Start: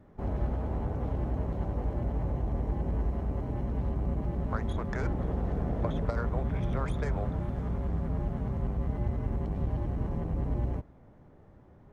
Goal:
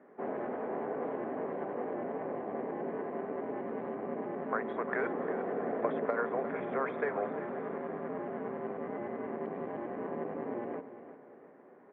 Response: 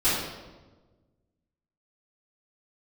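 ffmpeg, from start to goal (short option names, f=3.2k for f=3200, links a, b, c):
-af "highpass=f=310:w=0.5412,highpass=f=310:w=1.3066,equalizer=f=320:t=q:w=4:g=-7,equalizer=f=580:t=q:w=4:g=-5,equalizer=f=880:t=q:w=4:g=-7,equalizer=f=1.3k:t=q:w=4:g=-5,lowpass=f=2k:w=0.5412,lowpass=f=2k:w=1.3066,aecho=1:1:352|704|1056|1408:0.237|0.0972|0.0399|0.0163,volume=8dB"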